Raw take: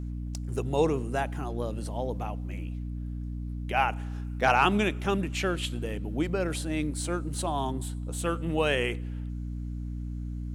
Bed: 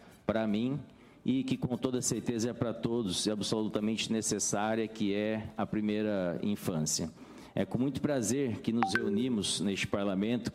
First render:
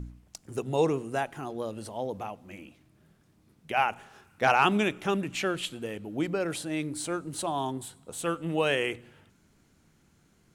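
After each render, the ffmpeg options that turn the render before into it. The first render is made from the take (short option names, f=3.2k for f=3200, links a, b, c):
-af "bandreject=f=60:t=h:w=4,bandreject=f=120:t=h:w=4,bandreject=f=180:t=h:w=4,bandreject=f=240:t=h:w=4,bandreject=f=300:t=h:w=4"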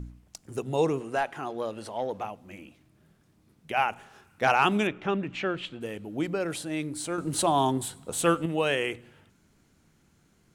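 -filter_complex "[0:a]asettb=1/sr,asplit=3[a][b][c];[a]atrim=end=1.004[d];[b]atrim=start=1:end=2.25,asetpts=PTS-STARTPTS,afade=t=in:d=0.004:c=qsin,afade=t=out:st=1.246:d=0.004:c=qsin,asplit=2[e][f];[f]highpass=f=720:p=1,volume=11dB,asoftclip=type=tanh:threshold=-16dB[g];[e][g]amix=inputs=2:normalize=0,lowpass=f=3k:p=1,volume=-6dB[h];[c]atrim=start=2.246[i];[d][h]acrossfade=d=0.004:c1=hsin:c2=qsin[j];[j][i]acrossfade=d=0.004:c1=qsin:c2=hsin,asettb=1/sr,asplit=3[k][l][m];[k]atrim=end=4.874[n];[l]atrim=start=4.87:end=5.81,asetpts=PTS-STARTPTS,afade=t=in:d=0.004:c=qsin,afade=t=out:st=0.936:d=0.004:c=qsin,lowpass=3.1k[o];[m]atrim=start=5.806[p];[n][o]acrossfade=d=0.004:c1=hsin:c2=qsin[q];[q][p]acrossfade=d=0.004:c1=qsin:c2=hsin,asettb=1/sr,asplit=3[r][s][t];[r]atrim=end=7.184[u];[s]atrim=start=7.18:end=8.46,asetpts=PTS-STARTPTS,afade=t=in:d=0.004:c=qsin,afade=t=out:st=1.276:d=0.004:c=qsin,acontrast=84[v];[t]atrim=start=8.456[w];[u][v]acrossfade=d=0.004:c1=hsin:c2=qsin[x];[x][w]acrossfade=d=0.004:c1=qsin:c2=hsin"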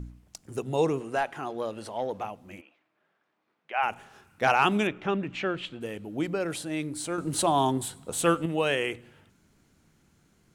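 -filter_complex "[0:a]asplit=3[a][b][c];[a]afade=t=out:st=2.6:d=0.02[d];[b]highpass=680,lowpass=2.4k,afade=t=in:st=2.6:d=0.02,afade=t=out:st=3.82:d=0.02[e];[c]afade=t=in:st=3.82:d=0.02[f];[d][e][f]amix=inputs=3:normalize=0"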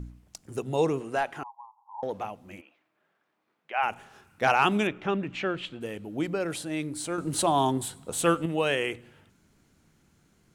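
-filter_complex "[0:a]asettb=1/sr,asplit=3[a][b][c];[a]atrim=end=1.434[d];[b]atrim=start=1.43:end=2.03,asetpts=PTS-STARTPTS,afade=t=in:d=0.004:c=qsin,afade=t=out:st=0.596:d=0.004:c=qsin,asuperpass=centerf=930:order=8:qfactor=4.1[e];[c]atrim=start=2.026[f];[d][e]acrossfade=d=0.004:c1=hsin:c2=qsin[g];[g][f]acrossfade=d=0.004:c1=qsin:c2=hsin"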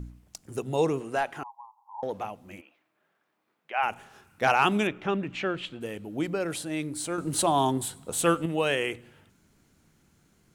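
-af "highshelf=f=10k:g=4.5"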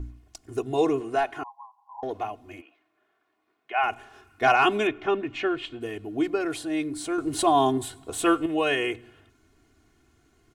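-af "highshelf=f=6.5k:g=-10,aecho=1:1:2.8:0.96"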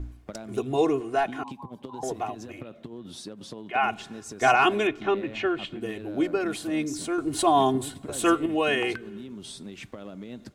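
-filter_complex "[1:a]volume=-9dB[a];[0:a][a]amix=inputs=2:normalize=0"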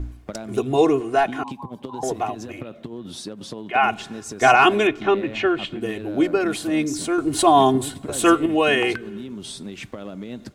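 -af "volume=6dB,alimiter=limit=-2dB:level=0:latency=1"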